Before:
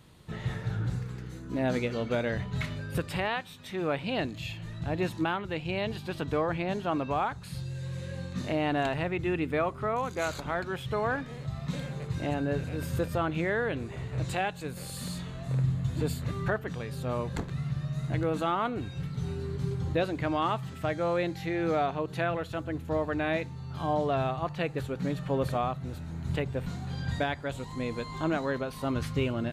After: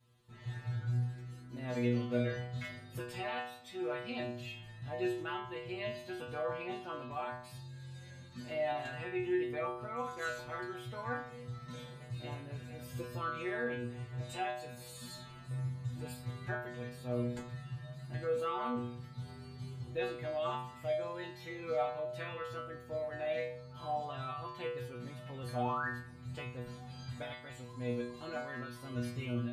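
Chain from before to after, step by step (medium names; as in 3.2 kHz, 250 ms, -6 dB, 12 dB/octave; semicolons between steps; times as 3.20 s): level rider gain up to 6 dB; painted sound rise, 25.59–25.88 s, 720–1900 Hz -23 dBFS; inharmonic resonator 120 Hz, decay 0.73 s, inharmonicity 0.002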